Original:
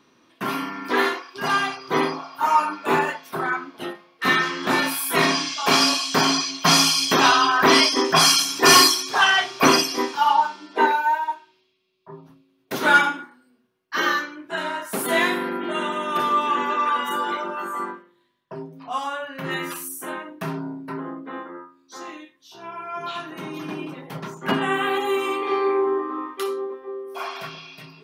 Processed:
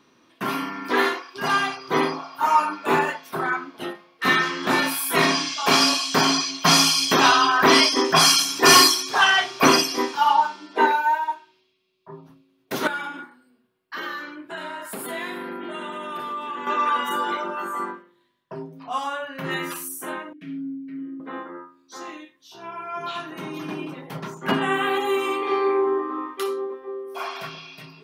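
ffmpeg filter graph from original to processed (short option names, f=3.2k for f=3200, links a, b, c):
-filter_complex "[0:a]asettb=1/sr,asplit=3[a][b][c];[a]atrim=end=12.874[d];[b]atrim=start=12.87:end=16.67,asetpts=PTS-STARTPTS,afade=t=in:d=0.004:c=qsin,afade=t=out:st=3.796:d=0.004:c=qsin,equalizer=f=6k:t=o:w=0.21:g=-11,acompressor=threshold=-31dB:ratio=3:attack=3.2:release=140:knee=1:detection=peak[e];[c]atrim=start=16.666[f];[d][e]acrossfade=d=0.004:c1=hsin:c2=qsin[g];[g][f]acrossfade=d=0.004:c1=qsin:c2=hsin,asettb=1/sr,asplit=3[h][i][j];[h]atrim=end=20.334[k];[i]atrim=start=20.33:end=21.2,asetpts=PTS-STARTPTS,afade=t=in:d=0.004:c=qsin,afade=t=out:st=0.866:d=0.004:c=qsin,asplit=3[l][m][n];[l]bandpass=f=270:t=q:w=8,volume=0dB[o];[m]bandpass=f=2.29k:t=q:w=8,volume=-6dB[p];[n]bandpass=f=3.01k:t=q:w=8,volume=-9dB[q];[o][p][q]amix=inputs=3:normalize=0,aecho=1:1:6.4:0.72,atrim=end_sample=38367[r];[j]atrim=start=21.196[s];[k][r]acrossfade=d=0.004:c1=hsin:c2=qsin[t];[t][s]acrossfade=d=0.004:c1=qsin:c2=hsin"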